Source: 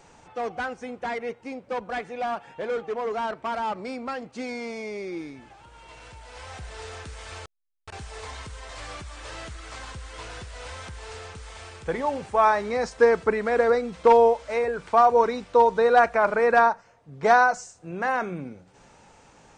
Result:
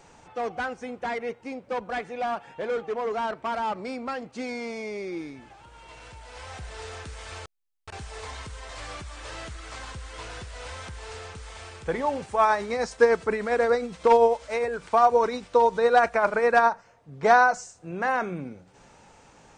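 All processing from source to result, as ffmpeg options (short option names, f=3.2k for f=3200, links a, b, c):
-filter_complex "[0:a]asettb=1/sr,asplit=3[a][b][c];[a]atrim=end=12.224[d];[b]atrim=start=12.22:end=16.72,asetpts=PTS-STARTPTS,afade=t=in:d=0.004:c=qsin,afade=t=out:st=4.496:d=0.004:c=qsin,highshelf=f=4.2k:g=6,tremolo=f=9.9:d=0.42[e];[c]atrim=start=16.716[f];[d][e]acrossfade=d=0.004:c1=hsin:c2=qsin[g];[g][f]acrossfade=d=0.004:c1=qsin:c2=hsin"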